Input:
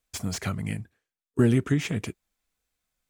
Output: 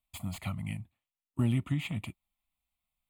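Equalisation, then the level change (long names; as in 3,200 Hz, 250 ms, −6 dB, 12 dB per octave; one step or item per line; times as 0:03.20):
phaser with its sweep stopped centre 1,600 Hz, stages 6
−4.0 dB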